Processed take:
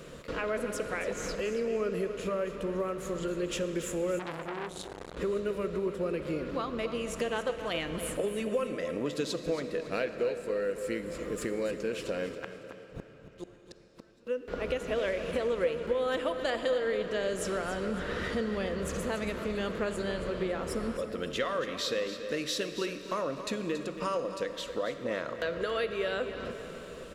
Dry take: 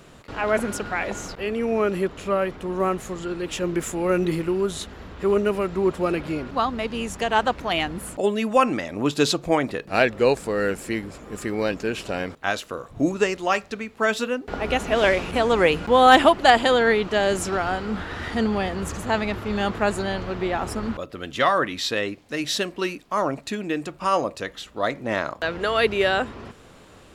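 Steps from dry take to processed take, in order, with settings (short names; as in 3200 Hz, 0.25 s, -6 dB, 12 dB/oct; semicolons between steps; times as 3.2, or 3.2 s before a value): thirty-one-band EQ 100 Hz -11 dB, 160 Hz +3 dB, 500 Hz +11 dB, 800 Hz -11 dB; compressor 4:1, threshold -32 dBFS, peak gain reduction 21.5 dB; 12.38–14.27 flipped gate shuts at -30 dBFS, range -35 dB; feedback echo 0.278 s, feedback 34%, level -11.5 dB; digital reverb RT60 4.3 s, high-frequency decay 0.85×, pre-delay 5 ms, DRR 9.5 dB; 4.19–5.17 core saturation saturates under 1900 Hz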